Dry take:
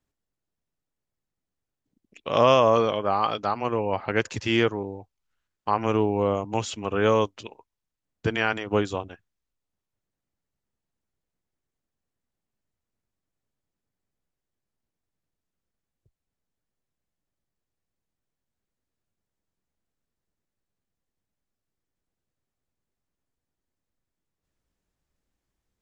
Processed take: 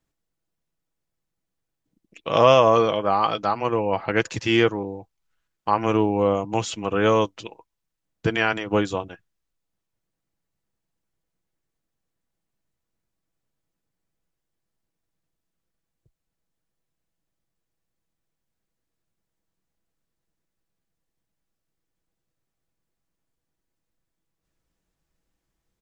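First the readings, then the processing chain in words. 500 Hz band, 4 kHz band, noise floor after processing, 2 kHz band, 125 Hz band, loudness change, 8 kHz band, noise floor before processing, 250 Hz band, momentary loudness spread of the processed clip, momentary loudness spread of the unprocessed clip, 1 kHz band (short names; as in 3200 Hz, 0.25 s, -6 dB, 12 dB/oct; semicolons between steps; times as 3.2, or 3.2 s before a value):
+2.5 dB, +3.0 dB, -82 dBFS, +3.0 dB, +2.0 dB, +3.0 dB, n/a, under -85 dBFS, +3.0 dB, 15 LU, 15 LU, +3.0 dB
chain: comb 6.1 ms, depth 31%; gain +2.5 dB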